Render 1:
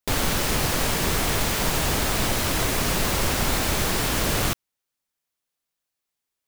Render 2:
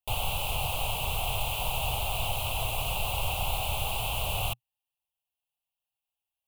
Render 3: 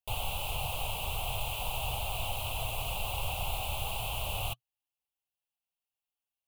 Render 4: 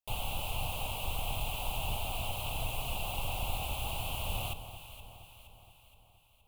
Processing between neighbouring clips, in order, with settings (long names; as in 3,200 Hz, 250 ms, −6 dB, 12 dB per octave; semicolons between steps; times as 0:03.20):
drawn EQ curve 120 Hz 0 dB, 200 Hz −17 dB, 310 Hz −21 dB, 790 Hz +5 dB, 1,200 Hz −7 dB, 1,800 Hz −30 dB, 2,700 Hz +7 dB, 5,400 Hz −16 dB, 11,000 Hz −1 dB; level −5 dB
flanger 1.5 Hz, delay 1.1 ms, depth 3 ms, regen −73%
sub-octave generator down 2 octaves, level 0 dB; delay that swaps between a low-pass and a high-pass 235 ms, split 1,200 Hz, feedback 72%, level −9.5 dB; level −2.5 dB